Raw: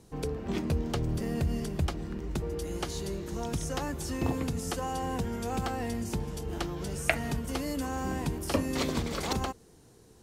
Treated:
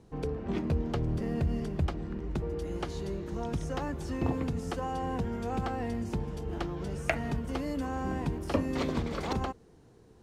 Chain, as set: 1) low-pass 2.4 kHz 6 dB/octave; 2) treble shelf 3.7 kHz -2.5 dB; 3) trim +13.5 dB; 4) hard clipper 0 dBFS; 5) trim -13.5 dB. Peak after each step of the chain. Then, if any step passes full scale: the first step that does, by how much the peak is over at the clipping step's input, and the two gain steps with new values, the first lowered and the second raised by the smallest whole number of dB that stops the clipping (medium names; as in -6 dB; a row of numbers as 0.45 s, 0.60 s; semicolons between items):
-8.5 dBFS, -9.0 dBFS, +4.5 dBFS, 0.0 dBFS, -13.5 dBFS; step 3, 4.5 dB; step 3 +8.5 dB, step 5 -8.5 dB